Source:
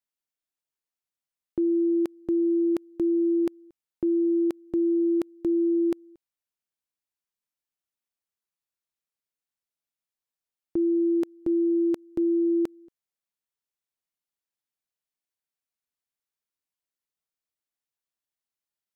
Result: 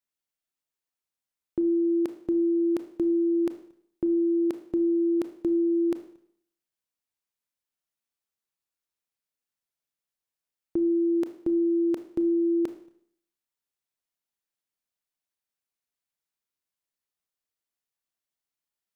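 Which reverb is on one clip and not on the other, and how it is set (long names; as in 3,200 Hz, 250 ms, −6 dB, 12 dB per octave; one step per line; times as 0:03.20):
four-comb reverb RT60 0.61 s, combs from 25 ms, DRR 9.5 dB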